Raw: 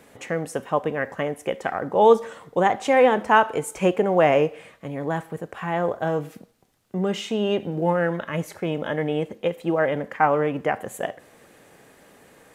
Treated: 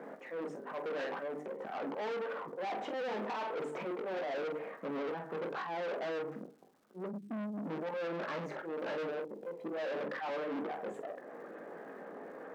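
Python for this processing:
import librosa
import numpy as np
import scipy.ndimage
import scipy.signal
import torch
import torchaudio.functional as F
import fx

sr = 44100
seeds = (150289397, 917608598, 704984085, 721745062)

p1 = fx.envelope_sharpen(x, sr, power=1.5)
p2 = fx.high_shelf_res(p1, sr, hz=2000.0, db=-10.0, q=1.5)
p3 = fx.hum_notches(p2, sr, base_hz=50, count=9)
p4 = fx.spec_erase(p3, sr, start_s=7.06, length_s=0.64, low_hz=310.0, high_hz=8000.0)
p5 = fx.auto_swell(p4, sr, attack_ms=336.0)
p6 = fx.rider(p5, sr, range_db=5, speed_s=0.5)
p7 = p5 + F.gain(torch.from_numpy(p6), 0.5).numpy()
p8 = fx.room_early_taps(p7, sr, ms=(19, 47), db=(-7.5, -9.0))
p9 = fx.tube_stage(p8, sr, drive_db=33.0, bias=0.4)
p10 = scipy.signal.sosfilt(scipy.signal.butter(4, 200.0, 'highpass', fs=sr, output='sos'), p9)
p11 = fx.air_absorb(p10, sr, metres=180.0)
p12 = fx.dmg_crackle(p11, sr, seeds[0], per_s=430.0, level_db=-60.0)
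y = F.gain(torch.from_numpy(p12), -2.0).numpy()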